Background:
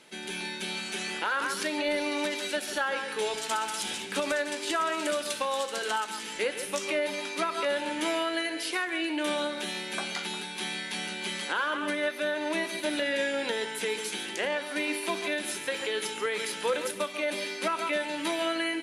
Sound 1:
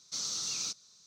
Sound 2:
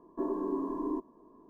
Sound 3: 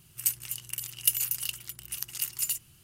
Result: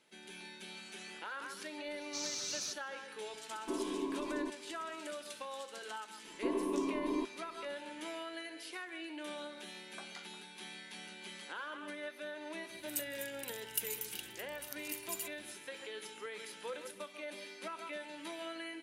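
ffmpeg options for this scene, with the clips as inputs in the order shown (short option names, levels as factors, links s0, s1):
-filter_complex "[2:a]asplit=2[s0][s1];[0:a]volume=0.188[s2];[1:a]atrim=end=1.06,asetpts=PTS-STARTPTS,volume=0.562,afade=t=in:d=0.004:c=hsin,afade=t=out:st=1.056:d=0.004:c=hsin,adelay=2010[s3];[s0]atrim=end=1.49,asetpts=PTS-STARTPTS,volume=0.562,afade=t=in:d=0.004:c=hsin,afade=t=out:st=1.486:d=0.004:c=hsin,adelay=3500[s4];[s1]atrim=end=1.49,asetpts=PTS-STARTPTS,volume=0.794,afade=t=in:d=0.004:c=hsin,afade=t=out:st=1.486:d=0.004:c=hsin,adelay=6250[s5];[3:a]atrim=end=2.83,asetpts=PTS-STARTPTS,volume=0.251,afade=t=in:d=0.004:c=hsin,afade=t=out:st=2.826:d=0.004:c=hsin,adelay=12700[s6];[s2][s3][s4][s5][s6]amix=inputs=5:normalize=0"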